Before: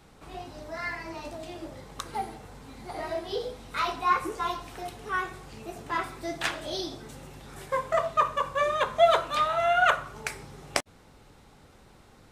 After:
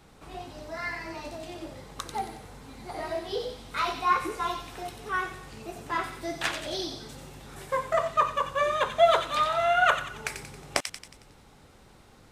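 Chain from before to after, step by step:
delay with a high-pass on its return 91 ms, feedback 49%, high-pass 2,300 Hz, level −5.5 dB

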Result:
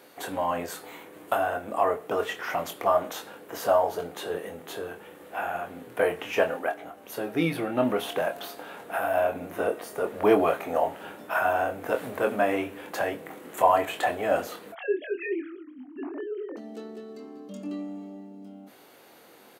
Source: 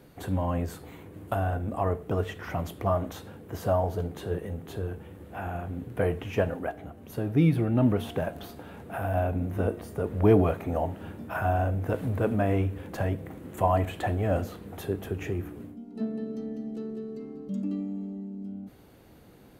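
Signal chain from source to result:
0:14.72–0:16.57: three sine waves on the formant tracks
Bessel high-pass filter 620 Hz, order 2
double-tracking delay 24 ms −6.5 dB
level +7 dB

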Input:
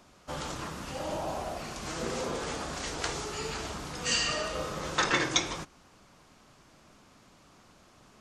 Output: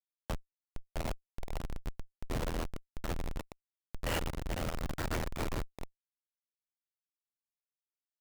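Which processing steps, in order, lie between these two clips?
square-wave tremolo 1.3 Hz, depth 60%, duty 45%
on a send: echo with a time of its own for lows and highs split 1,000 Hz, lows 365 ms, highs 90 ms, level −16 dB
on the sum: single-sideband voice off tune +67 Hz 420–3,000 Hz
ring modulation 41 Hz
repeating echo 426 ms, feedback 17%, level −5.5 dB
comparator with hysteresis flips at −34 dBFS
brickwall limiter −48 dBFS, peak gain reduction 9.5 dB
level +17.5 dB

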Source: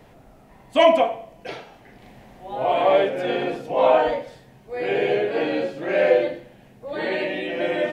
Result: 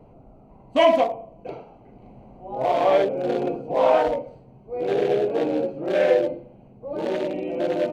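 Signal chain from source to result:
adaptive Wiener filter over 25 samples
in parallel at −2 dB: brickwall limiter −15.5 dBFS, peak gain reduction 11 dB
on the sum: level −3.5 dB

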